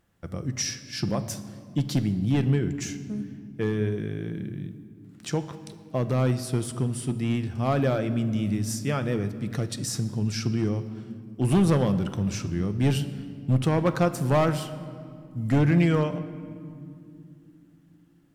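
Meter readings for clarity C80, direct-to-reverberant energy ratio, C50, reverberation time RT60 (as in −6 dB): 14.0 dB, 9.5 dB, 13.0 dB, 2.6 s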